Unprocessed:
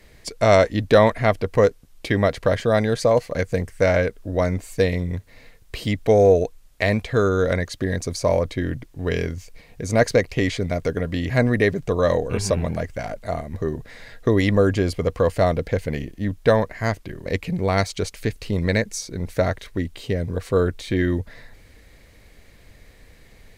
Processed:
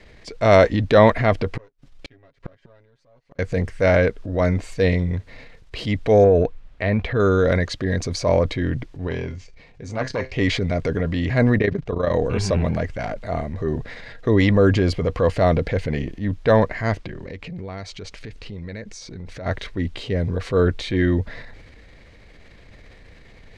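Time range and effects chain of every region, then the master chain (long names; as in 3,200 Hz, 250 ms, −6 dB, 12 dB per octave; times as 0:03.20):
0:01.55–0:03.39: gain on one half-wave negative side −7 dB + comb filter 7.3 ms, depth 90% + gate with flip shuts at −18 dBFS, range −41 dB
0:06.24–0:07.20: bass and treble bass +2 dB, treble −13 dB + downward compressor 2 to 1, threshold −17 dBFS
0:09.07–0:10.34: low-pass filter 8,600 Hz 24 dB per octave + tuned comb filter 130 Hz, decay 0.22 s + saturating transformer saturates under 710 Hz
0:11.58–0:12.14: amplitude modulation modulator 28 Hz, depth 75% + high-frequency loss of the air 82 metres
0:16.97–0:19.46: low-pass filter 9,200 Hz + downward compressor, threshold −32 dBFS
whole clip: low-pass filter 4,500 Hz 12 dB per octave; transient designer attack −5 dB, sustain +5 dB; level +2.5 dB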